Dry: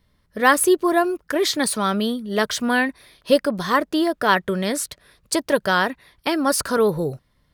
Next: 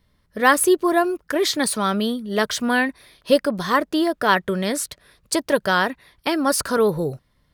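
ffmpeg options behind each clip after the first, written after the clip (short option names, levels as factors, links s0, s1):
-af anull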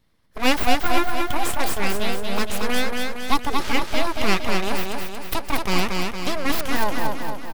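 -filter_complex "[0:a]aeval=exprs='abs(val(0))':c=same,asplit=2[s0][s1];[s1]aecho=0:1:231|462|693|924|1155|1386|1617:0.668|0.361|0.195|0.105|0.0568|0.0307|0.0166[s2];[s0][s2]amix=inputs=2:normalize=0,volume=0.891"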